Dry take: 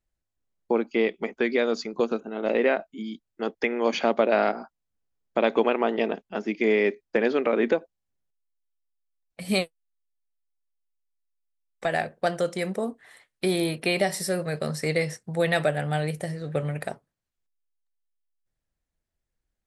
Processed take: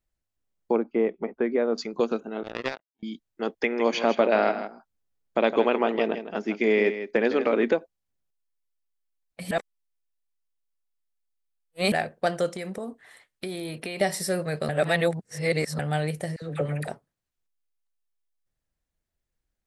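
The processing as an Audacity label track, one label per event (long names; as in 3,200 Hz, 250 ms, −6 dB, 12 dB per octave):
0.760000	1.780000	low-pass filter 1,200 Hz
2.430000	3.030000	power curve on the samples exponent 3
3.610000	7.630000	single-tap delay 160 ms −10.5 dB
9.510000	11.920000	reverse
12.490000	14.010000	downward compressor, threshold −30 dBFS
14.690000	15.790000	reverse
16.360000	16.880000	all-pass dispersion lows, late by 59 ms, half as late at 790 Hz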